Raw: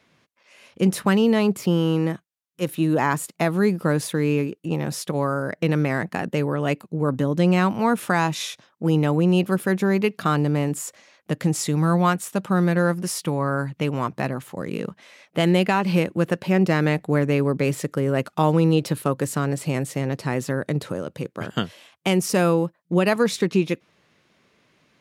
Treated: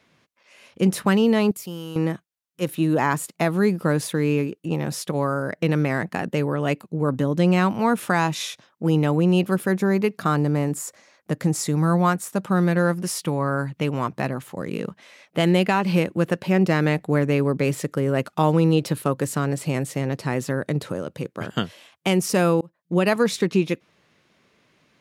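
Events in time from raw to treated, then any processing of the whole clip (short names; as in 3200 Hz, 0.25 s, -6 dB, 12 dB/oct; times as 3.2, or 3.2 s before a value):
1.51–1.96 pre-emphasis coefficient 0.8
9.66–12.45 bell 3000 Hz -6 dB 0.72 oct
22.61–23.11 fade in equal-power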